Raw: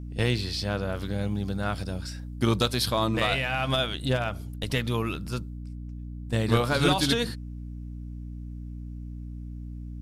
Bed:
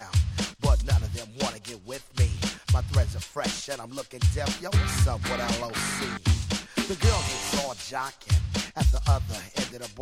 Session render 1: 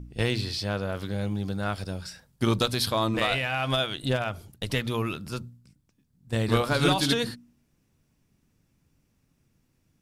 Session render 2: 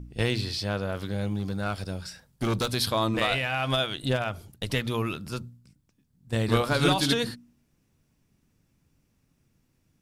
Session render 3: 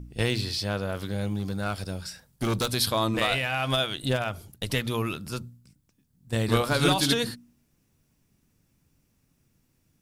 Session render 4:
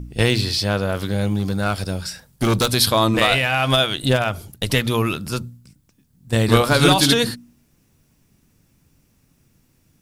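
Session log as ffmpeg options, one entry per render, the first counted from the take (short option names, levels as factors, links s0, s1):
-af "bandreject=f=60:t=h:w=4,bandreject=f=120:t=h:w=4,bandreject=f=180:t=h:w=4,bandreject=f=240:t=h:w=4,bandreject=f=300:t=h:w=4"
-filter_complex "[0:a]asettb=1/sr,asplit=3[s0][s1][s2];[s0]atrim=end=1.394[s3];[s1]atrim=start=1.39:end=2.71,asetpts=PTS-STARTPTS,afade=t=in:d=0.004:c=qsin,afade=t=out:st=1.316:d=0.004:c=qsin,volume=12.6,asoftclip=hard,volume=0.0794[s4];[s2]atrim=start=2.706[s5];[s3][s4]acrossfade=d=0.004:c1=hsin:c2=qsin[s6];[s6][s5]acrossfade=d=0.004:c1=qsin:c2=hsin"
-af "highshelf=f=7500:g=7"
-af "volume=2.66,alimiter=limit=0.794:level=0:latency=1"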